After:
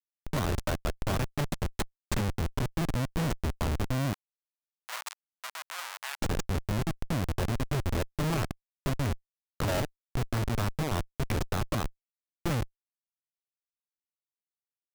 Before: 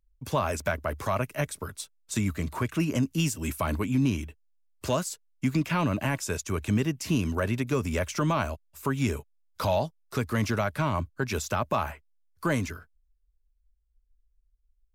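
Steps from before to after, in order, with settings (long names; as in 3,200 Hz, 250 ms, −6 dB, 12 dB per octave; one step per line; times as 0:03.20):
speech leveller within 5 dB 0.5 s
comparator with hysteresis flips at −25.5 dBFS
0:04.13–0:06.22: high-pass filter 940 Hz 24 dB per octave
level +2.5 dB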